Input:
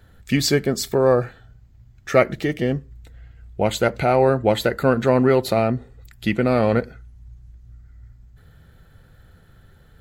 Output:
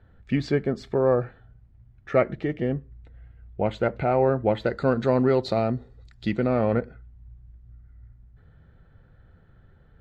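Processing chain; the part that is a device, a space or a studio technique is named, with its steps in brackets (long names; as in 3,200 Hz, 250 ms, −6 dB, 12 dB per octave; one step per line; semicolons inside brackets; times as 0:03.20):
0:04.66–0:06.47: flat-topped bell 6,100 Hz +13.5 dB
phone in a pocket (low-pass filter 3,200 Hz 12 dB per octave; high-shelf EQ 2,100 Hz −8.5 dB)
level −4 dB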